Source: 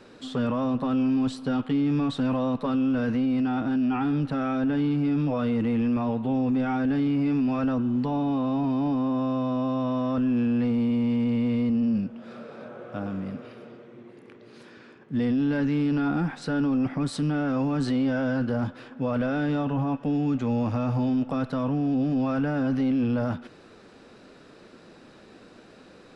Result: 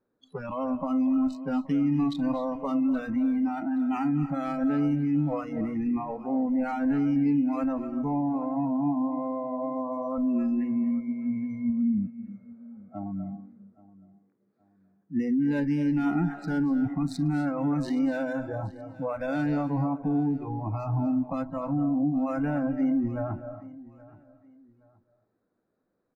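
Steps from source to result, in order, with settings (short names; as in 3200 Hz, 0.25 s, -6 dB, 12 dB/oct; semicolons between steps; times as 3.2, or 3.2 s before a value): Wiener smoothing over 15 samples; spectral noise reduction 27 dB; feedback echo 0.823 s, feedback 32%, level -20.5 dB; reverb RT60 0.40 s, pre-delay 0.207 s, DRR 11.5 dB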